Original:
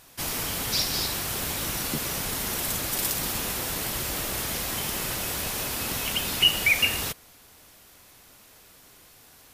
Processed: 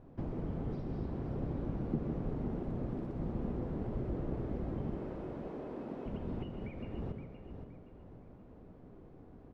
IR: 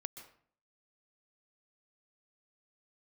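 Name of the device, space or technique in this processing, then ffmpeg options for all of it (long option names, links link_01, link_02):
television next door: -filter_complex "[0:a]asettb=1/sr,asplit=3[link_01][link_02][link_03];[link_01]atrim=end=4.954[link_04];[link_02]atrim=start=4.95:end=6.06,asetpts=PTS-STARTPTS,afade=type=in:duration=0.004:curve=qsin,afade=type=out:start_time=1.106:duration=0.004:curve=qsin,highpass=300[link_05];[link_03]atrim=start=6.056[link_06];[link_04][link_05]acrossfade=duration=0.004:curve1=hsin:curve2=qsin[link_07];[link_07][link_06]acrossfade=duration=0.004:curve1=qsin:curve2=hsin,equalizer=frequency=91:width=1.5:gain=-3,acompressor=threshold=-36dB:ratio=4,lowpass=370[link_08];[1:a]atrim=start_sample=2205[link_09];[link_08][link_09]afir=irnorm=-1:irlink=0,aecho=1:1:520|1040|1560:0.355|0.106|0.0319,volume=12dB"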